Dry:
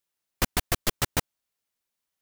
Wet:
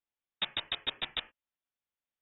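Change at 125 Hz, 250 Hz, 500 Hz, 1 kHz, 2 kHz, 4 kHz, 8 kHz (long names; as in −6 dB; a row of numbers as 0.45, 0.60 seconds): −24.5 dB, −19.5 dB, −15.0 dB, −12.0 dB, −7.0 dB, +0.5 dB, below −40 dB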